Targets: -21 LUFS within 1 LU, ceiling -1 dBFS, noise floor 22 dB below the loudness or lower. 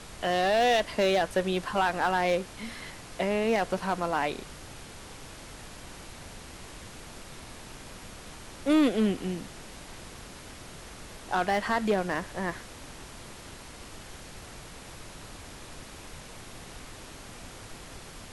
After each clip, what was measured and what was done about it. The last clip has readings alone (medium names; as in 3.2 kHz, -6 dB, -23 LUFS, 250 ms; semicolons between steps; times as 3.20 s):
clipped samples 0.6%; clipping level -18.0 dBFS; noise floor -46 dBFS; noise floor target -50 dBFS; loudness -28.0 LUFS; peak level -18.0 dBFS; loudness target -21.0 LUFS
-> clip repair -18 dBFS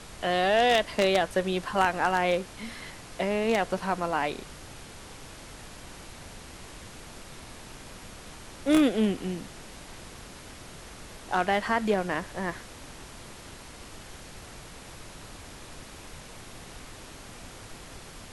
clipped samples 0.0%; noise floor -46 dBFS; noise floor target -49 dBFS
-> noise print and reduce 6 dB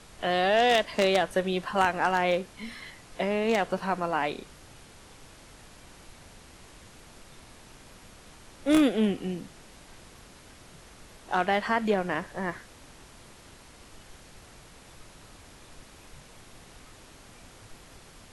noise floor -52 dBFS; loudness -27.0 LUFS; peak level -9.0 dBFS; loudness target -21.0 LUFS
-> trim +6 dB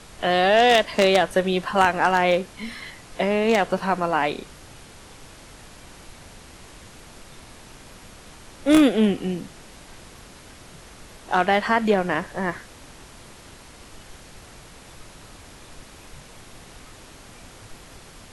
loudness -21.0 LUFS; peak level -3.0 dBFS; noise floor -46 dBFS